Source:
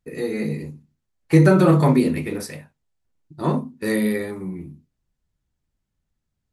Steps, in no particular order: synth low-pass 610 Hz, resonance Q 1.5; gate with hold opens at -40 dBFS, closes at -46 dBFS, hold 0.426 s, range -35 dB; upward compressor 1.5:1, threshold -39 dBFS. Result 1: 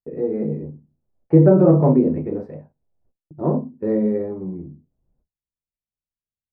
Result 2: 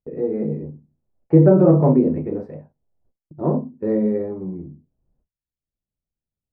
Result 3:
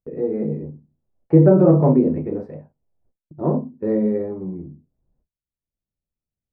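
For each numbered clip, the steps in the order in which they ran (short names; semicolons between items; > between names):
upward compressor > gate with hold > synth low-pass; gate with hold > upward compressor > synth low-pass; gate with hold > synth low-pass > upward compressor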